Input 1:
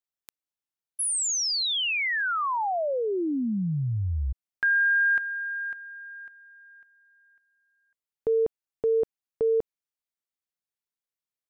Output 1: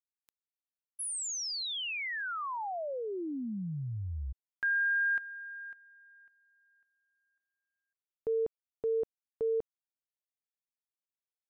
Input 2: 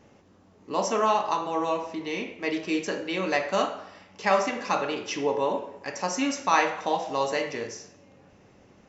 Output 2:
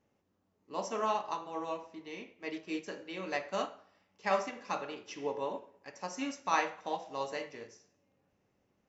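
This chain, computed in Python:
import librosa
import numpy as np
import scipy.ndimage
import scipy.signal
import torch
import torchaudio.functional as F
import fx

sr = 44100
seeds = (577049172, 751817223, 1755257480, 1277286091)

y = fx.upward_expand(x, sr, threshold_db=-44.0, expansion=1.5)
y = y * librosa.db_to_amplitude(-7.0)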